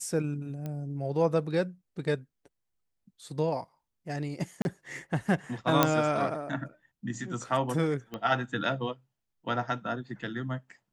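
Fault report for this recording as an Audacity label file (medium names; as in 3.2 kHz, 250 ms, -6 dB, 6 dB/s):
0.660000	0.660000	pop -24 dBFS
4.620000	4.650000	dropout 31 ms
5.830000	5.830000	pop -6 dBFS
8.140000	8.140000	pop -23 dBFS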